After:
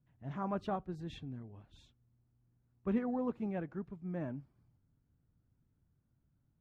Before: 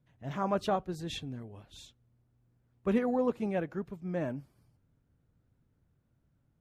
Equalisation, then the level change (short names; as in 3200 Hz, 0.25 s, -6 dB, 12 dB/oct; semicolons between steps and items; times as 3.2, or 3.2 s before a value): bell 520 Hz -6 dB 0.92 oct; high shelf 2000 Hz -10 dB; high shelf 6300 Hz -11 dB; -3.0 dB